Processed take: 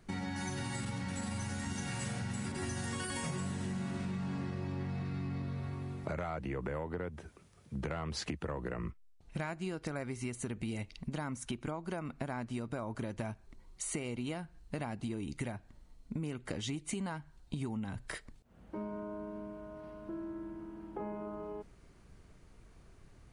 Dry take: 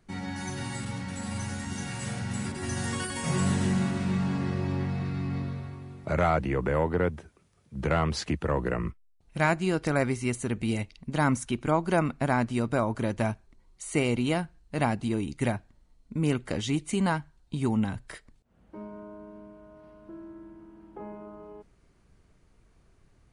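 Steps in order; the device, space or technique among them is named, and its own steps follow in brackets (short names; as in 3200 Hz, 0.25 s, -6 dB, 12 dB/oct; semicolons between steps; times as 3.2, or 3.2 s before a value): serial compression, peaks first (compressor, threshold -33 dBFS, peak gain reduction 14 dB; compressor 2:1, threshold -42 dBFS, peak gain reduction 7 dB); 8.7–9.41 LPF 9300 Hz; gain +3.5 dB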